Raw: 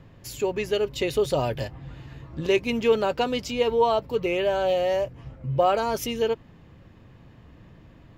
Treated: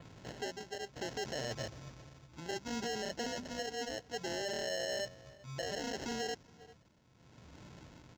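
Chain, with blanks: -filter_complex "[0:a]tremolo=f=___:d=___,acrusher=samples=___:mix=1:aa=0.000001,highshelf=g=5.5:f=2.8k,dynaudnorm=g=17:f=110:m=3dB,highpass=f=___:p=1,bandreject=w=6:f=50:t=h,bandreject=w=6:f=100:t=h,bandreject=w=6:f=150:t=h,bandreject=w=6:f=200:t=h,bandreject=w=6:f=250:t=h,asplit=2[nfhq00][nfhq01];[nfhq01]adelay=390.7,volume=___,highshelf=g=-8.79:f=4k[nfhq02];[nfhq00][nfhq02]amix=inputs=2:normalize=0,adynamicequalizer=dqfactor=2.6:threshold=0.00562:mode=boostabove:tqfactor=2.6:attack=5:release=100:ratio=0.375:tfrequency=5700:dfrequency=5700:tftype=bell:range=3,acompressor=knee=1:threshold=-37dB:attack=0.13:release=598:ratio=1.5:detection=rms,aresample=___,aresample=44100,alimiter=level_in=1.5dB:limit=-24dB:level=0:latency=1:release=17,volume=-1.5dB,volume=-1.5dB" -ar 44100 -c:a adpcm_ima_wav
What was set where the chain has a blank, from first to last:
0.64, 0.79, 37, 88, -28dB, 16000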